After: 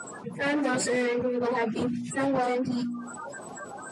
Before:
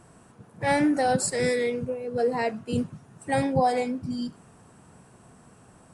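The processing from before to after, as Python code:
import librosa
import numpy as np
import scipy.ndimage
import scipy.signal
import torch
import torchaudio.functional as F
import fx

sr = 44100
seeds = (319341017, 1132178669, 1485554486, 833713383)

y = fx.spec_quant(x, sr, step_db=30)
y = fx.noise_reduce_blind(y, sr, reduce_db=23)
y = fx.dynamic_eq(y, sr, hz=420.0, q=0.8, threshold_db=-38.0, ratio=4.0, max_db=4)
y = fx.clip_asym(y, sr, top_db=-27.0, bottom_db=-13.0)
y = fx.stretch_vocoder_free(y, sr, factor=0.66)
y = fx.bandpass_edges(y, sr, low_hz=180.0, high_hz=6200.0)
y = fx.hum_notches(y, sr, base_hz=60, count=5)
y = fx.env_flatten(y, sr, amount_pct=70)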